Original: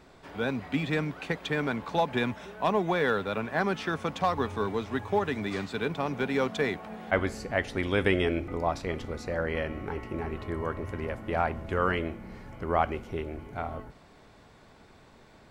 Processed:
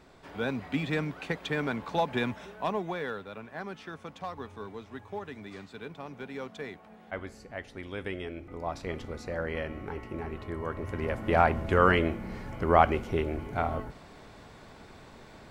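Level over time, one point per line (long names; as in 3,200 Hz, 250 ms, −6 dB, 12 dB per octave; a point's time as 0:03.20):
0:02.42 −1.5 dB
0:03.29 −11.5 dB
0:08.35 −11.5 dB
0:08.87 −3 dB
0:10.63 −3 dB
0:11.30 +5 dB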